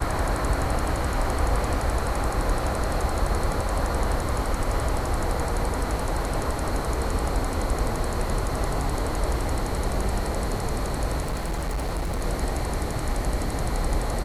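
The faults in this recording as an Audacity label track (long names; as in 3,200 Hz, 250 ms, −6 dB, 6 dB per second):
11.200000	12.220000	clipping −23.5 dBFS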